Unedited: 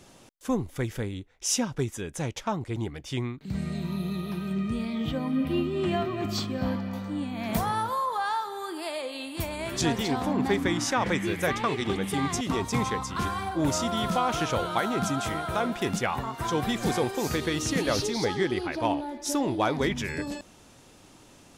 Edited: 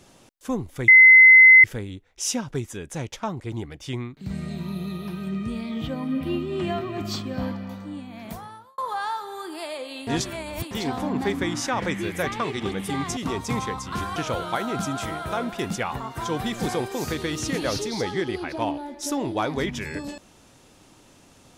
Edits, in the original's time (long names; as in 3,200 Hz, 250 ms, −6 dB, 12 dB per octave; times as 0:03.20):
0:00.88: insert tone 2,050 Hz −7 dBFS 0.76 s
0:06.70–0:08.02: fade out
0:09.31–0:09.95: reverse
0:13.40–0:14.39: remove